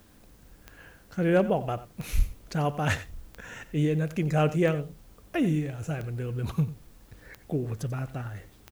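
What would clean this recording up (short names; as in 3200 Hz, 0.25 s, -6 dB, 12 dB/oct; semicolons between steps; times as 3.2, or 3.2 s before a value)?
clip repair -13.5 dBFS; de-click; inverse comb 91 ms -15.5 dB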